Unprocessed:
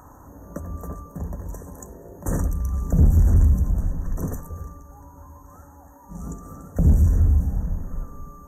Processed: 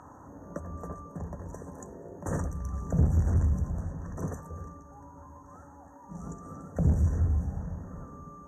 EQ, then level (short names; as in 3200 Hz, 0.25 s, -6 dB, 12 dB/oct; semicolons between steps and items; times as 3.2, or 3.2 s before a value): HPF 100 Hz 12 dB/oct; air absorption 76 m; dynamic EQ 250 Hz, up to -6 dB, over -41 dBFS, Q 1.1; -1.5 dB